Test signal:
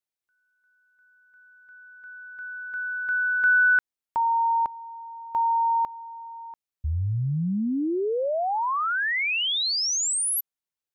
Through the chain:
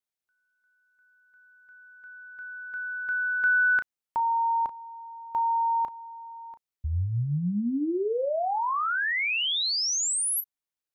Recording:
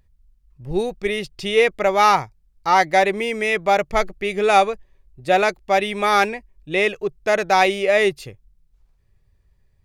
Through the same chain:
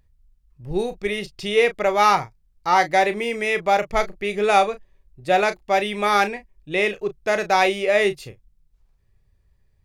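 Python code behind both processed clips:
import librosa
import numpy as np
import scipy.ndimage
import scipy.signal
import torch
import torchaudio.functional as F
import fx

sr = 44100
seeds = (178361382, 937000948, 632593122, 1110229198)

y = fx.doubler(x, sr, ms=34.0, db=-11.0)
y = y * librosa.db_to_amplitude(-2.0)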